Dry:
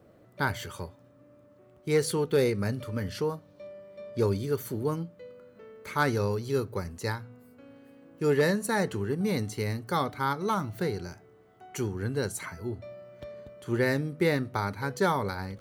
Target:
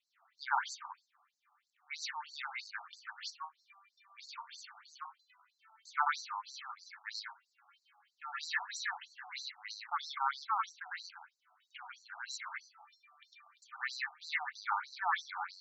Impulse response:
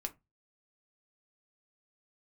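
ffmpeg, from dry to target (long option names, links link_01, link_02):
-filter_complex "[0:a]asplit=2[link_01][link_02];[1:a]atrim=start_sample=2205,adelay=103[link_03];[link_02][link_03]afir=irnorm=-1:irlink=0,volume=4.5dB[link_04];[link_01][link_04]amix=inputs=2:normalize=0,afftfilt=real='re*between(b*sr/1024,950*pow(5700/950,0.5+0.5*sin(2*PI*3.1*pts/sr))/1.41,950*pow(5700/950,0.5+0.5*sin(2*PI*3.1*pts/sr))*1.41)':imag='im*between(b*sr/1024,950*pow(5700/950,0.5+0.5*sin(2*PI*3.1*pts/sr))/1.41,950*pow(5700/950,0.5+0.5*sin(2*PI*3.1*pts/sr))*1.41)':win_size=1024:overlap=0.75,volume=-2.5dB"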